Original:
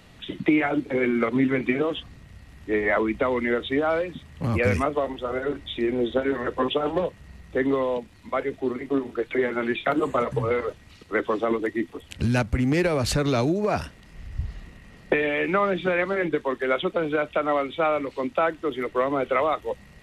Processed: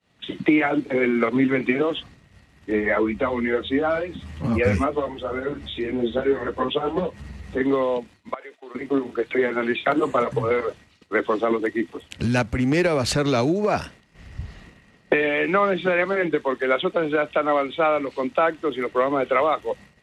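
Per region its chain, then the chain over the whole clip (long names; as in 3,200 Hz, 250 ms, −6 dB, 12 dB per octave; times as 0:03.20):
0:02.70–0:07.61: upward compression, threshold −29 dBFS + low-shelf EQ 220 Hz +8 dB + string-ensemble chorus
0:08.34–0:08.75: high-pass filter 680 Hz + downward compressor 10 to 1, threshold −37 dBFS
whole clip: low-pass filter 9,900 Hz 12 dB per octave; downward expander −40 dBFS; high-pass filter 140 Hz 6 dB per octave; level +3 dB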